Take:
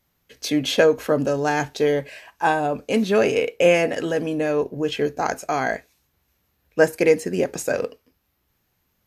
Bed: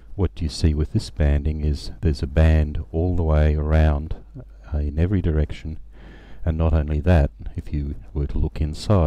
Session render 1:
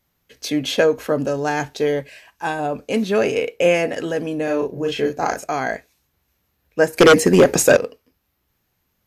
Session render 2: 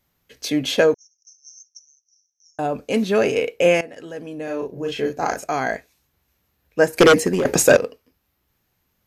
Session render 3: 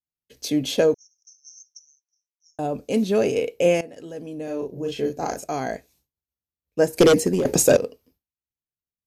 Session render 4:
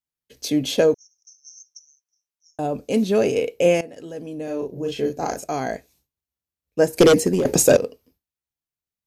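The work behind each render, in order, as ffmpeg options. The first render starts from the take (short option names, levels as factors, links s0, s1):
-filter_complex "[0:a]asettb=1/sr,asplit=3[s0][s1][s2];[s0]atrim=end=2.024[s3];[s1]atrim=start=2.02:end=2.59,asetpts=PTS-STARTPTS,afade=t=in:d=0.004:c=qsin,afade=t=out:st=0.566:d=0.004:c=qsin,equalizer=f=730:w=0.51:g=-5.5[s4];[s2]atrim=start=2.586[s5];[s3][s4]acrossfade=d=0.004:c1=hsin:c2=qsin[s6];[s6][s5]acrossfade=d=0.004:c1=qsin:c2=hsin,asettb=1/sr,asplit=3[s7][s8][s9];[s7]atrim=end=4.444[s10];[s8]atrim=start=4.44:end=5.44,asetpts=PTS-STARTPTS,afade=t=in:d=0.004:c=qsin,afade=t=out:st=0.996:d=0.004:c=qsin,asplit=2[s11][s12];[s12]adelay=37,volume=0.708[s13];[s11][s13]amix=inputs=2:normalize=0,atrim=end_sample=44100[s14];[s9]atrim=start=5.436[s15];[s10][s14]acrossfade=d=0.004:c1=hsin:c2=qsin[s16];[s16][s15]acrossfade=d=0.004:c1=qsin:c2=hsin,asettb=1/sr,asplit=3[s17][s18][s19];[s17]atrim=end=6.974[s20];[s18]atrim=start=6.97:end=7.77,asetpts=PTS-STARTPTS,afade=t=in:d=0.004:c=qsin,afade=t=out:st=0.796:d=0.004:c=qsin,aeval=exprs='0.562*sin(PI/2*2.82*val(0)/0.562)':c=same[s21];[s19]atrim=start=7.766[s22];[s20][s21]acrossfade=d=0.004:c1=hsin:c2=qsin[s23];[s23][s22]acrossfade=d=0.004:c1=qsin:c2=hsin"
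-filter_complex "[0:a]asettb=1/sr,asplit=3[s0][s1][s2];[s0]atrim=end=0.944[s3];[s1]atrim=start=0.94:end=2.59,asetpts=PTS-STARTPTS,afade=t=in:d=0.004:c=qsin,afade=t=out:st=1.646:d=0.004:c=qsin,asuperpass=centerf=5900:order=8:qfactor=6.1[s4];[s2]atrim=start=2.586[s5];[s3][s4]acrossfade=d=0.004:c1=hsin:c2=qsin[s6];[s6][s5]acrossfade=d=0.004:c1=qsin:c2=hsin,asplit=3[s7][s8][s9];[s7]atrim=end=3.81,asetpts=PTS-STARTPTS,afade=t=out:st=3.806:d=0.004:c=hsin:silence=0.149624[s10];[s8]atrim=start=3.81:end=7.45,asetpts=PTS-STARTPTS,afade=t=in:d=1.77:silence=0.149624,afade=t=out:st=3:d=0.64:c=qsin:silence=0.223872[s11];[s9]atrim=start=7.45,asetpts=PTS-STARTPTS,afade=t=in:d=0.004:c=hsin:silence=0.223872[s12];[s10][s11][s12]concat=n=3:v=0:a=1"
-af "agate=range=0.0224:threshold=0.00251:ratio=3:detection=peak,equalizer=f=1600:t=o:w=1.9:g=-10.5"
-af "volume=1.19"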